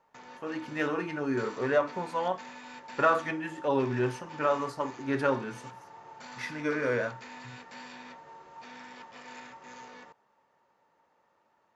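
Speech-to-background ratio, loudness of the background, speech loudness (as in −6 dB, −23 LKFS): 15.5 dB, −46.5 LKFS, −31.0 LKFS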